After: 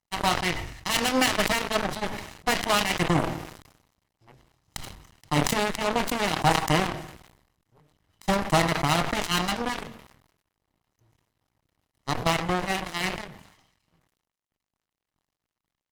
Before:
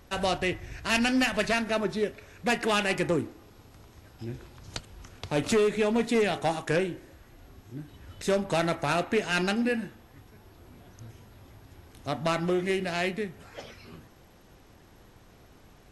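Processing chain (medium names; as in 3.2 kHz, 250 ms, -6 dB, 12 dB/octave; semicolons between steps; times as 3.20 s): comb filter that takes the minimum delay 1 ms; comb 6.4 ms, depth 33%; de-hum 225.8 Hz, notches 29; dynamic bell 620 Hz, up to +3 dB, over -42 dBFS, Q 1.6; spring tank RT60 1.1 s, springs 54 ms, chirp 80 ms, DRR 18 dB; crossover distortion -50.5 dBFS; Chebyshev shaper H 7 -16 dB, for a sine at -13.5 dBFS; decay stretcher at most 68 dB/s; trim +4 dB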